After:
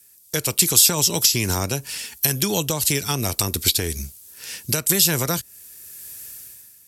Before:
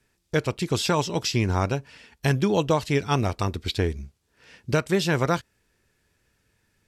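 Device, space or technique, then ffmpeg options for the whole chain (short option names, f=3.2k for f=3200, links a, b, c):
FM broadcast chain: -filter_complex "[0:a]highpass=46,dynaudnorm=f=160:g=7:m=16dB,acrossover=split=200|560[a][b][c];[a]acompressor=threshold=-21dB:ratio=4[d];[b]acompressor=threshold=-22dB:ratio=4[e];[c]acompressor=threshold=-25dB:ratio=4[f];[d][e][f]amix=inputs=3:normalize=0,aemphasis=mode=production:type=75fm,alimiter=limit=-11dB:level=0:latency=1:release=186,asoftclip=type=hard:threshold=-12.5dB,lowpass=f=15k:w=0.5412,lowpass=f=15k:w=1.3066,aemphasis=mode=production:type=75fm,volume=-1.5dB"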